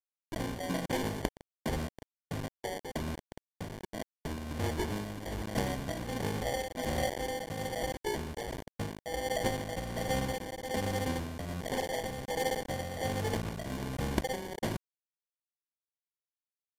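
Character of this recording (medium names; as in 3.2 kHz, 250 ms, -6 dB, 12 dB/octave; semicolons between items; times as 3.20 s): a quantiser's noise floor 6-bit, dither none; tremolo triangle 1.3 Hz, depth 55%; aliases and images of a low sample rate 1.3 kHz, jitter 0%; AAC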